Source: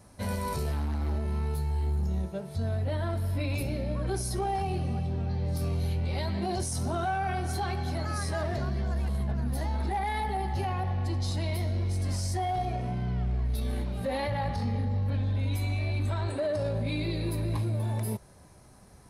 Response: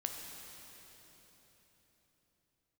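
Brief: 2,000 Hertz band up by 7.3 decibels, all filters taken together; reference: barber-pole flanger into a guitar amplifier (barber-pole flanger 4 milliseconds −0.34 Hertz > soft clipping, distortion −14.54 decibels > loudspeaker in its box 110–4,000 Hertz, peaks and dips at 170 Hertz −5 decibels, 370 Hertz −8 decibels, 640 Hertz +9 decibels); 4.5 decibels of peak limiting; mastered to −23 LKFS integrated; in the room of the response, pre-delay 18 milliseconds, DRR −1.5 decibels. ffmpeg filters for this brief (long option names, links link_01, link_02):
-filter_complex "[0:a]equalizer=frequency=2000:width_type=o:gain=9,alimiter=limit=-22.5dB:level=0:latency=1,asplit=2[link_01][link_02];[1:a]atrim=start_sample=2205,adelay=18[link_03];[link_02][link_03]afir=irnorm=-1:irlink=0,volume=1dB[link_04];[link_01][link_04]amix=inputs=2:normalize=0,asplit=2[link_05][link_06];[link_06]adelay=4,afreqshift=-0.34[link_07];[link_05][link_07]amix=inputs=2:normalize=1,asoftclip=threshold=-25dB,highpass=110,equalizer=frequency=170:width_type=q:width=4:gain=-5,equalizer=frequency=370:width_type=q:width=4:gain=-8,equalizer=frequency=640:width_type=q:width=4:gain=9,lowpass=frequency=4000:width=0.5412,lowpass=frequency=4000:width=1.3066,volume=10.5dB"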